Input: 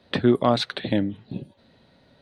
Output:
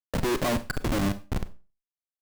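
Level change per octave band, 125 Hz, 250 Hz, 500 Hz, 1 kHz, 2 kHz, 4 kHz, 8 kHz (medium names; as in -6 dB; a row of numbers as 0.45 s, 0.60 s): -2.0 dB, -6.0 dB, -6.0 dB, -4.5 dB, 0.0 dB, -7.0 dB, no reading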